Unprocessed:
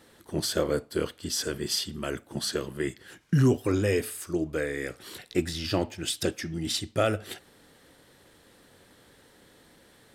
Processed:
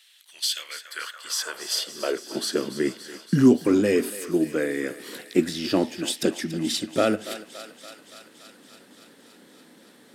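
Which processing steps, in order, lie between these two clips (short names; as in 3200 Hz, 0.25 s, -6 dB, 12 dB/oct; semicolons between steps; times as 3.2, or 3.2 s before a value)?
thinning echo 0.284 s, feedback 77%, high-pass 550 Hz, level -13 dB; high-pass sweep 2900 Hz -> 230 Hz, 0.53–2.65; gain +2 dB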